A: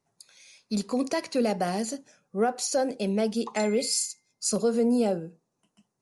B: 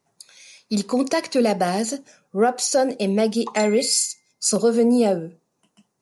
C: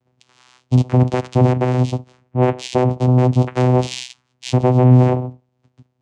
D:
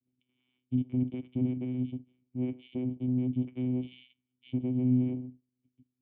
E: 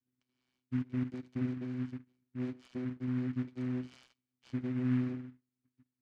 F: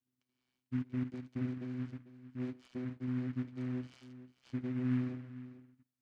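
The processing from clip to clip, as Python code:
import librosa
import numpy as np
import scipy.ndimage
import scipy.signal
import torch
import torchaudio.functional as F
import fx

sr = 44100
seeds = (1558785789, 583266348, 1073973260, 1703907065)

y1 = fx.low_shelf(x, sr, hz=85.0, db=-9.0)
y1 = F.gain(torch.from_numpy(y1), 7.0).numpy()
y2 = np.clip(10.0 ** (14.5 / 20.0) * y1, -1.0, 1.0) / 10.0 ** (14.5 / 20.0)
y2 = fx.vocoder(y2, sr, bands=4, carrier='saw', carrier_hz=126.0)
y2 = F.gain(torch.from_numpy(y2), 7.0).numpy()
y3 = fx.formant_cascade(y2, sr, vowel='i')
y3 = F.gain(torch.from_numpy(y3), -8.5).numpy()
y4 = fx.noise_mod_delay(y3, sr, seeds[0], noise_hz=1500.0, depth_ms=0.053)
y4 = F.gain(torch.from_numpy(y4), -5.0).numpy()
y5 = y4 + 10.0 ** (-15.0 / 20.0) * np.pad(y4, (int(446 * sr / 1000.0), 0))[:len(y4)]
y5 = F.gain(torch.from_numpy(y5), -2.0).numpy()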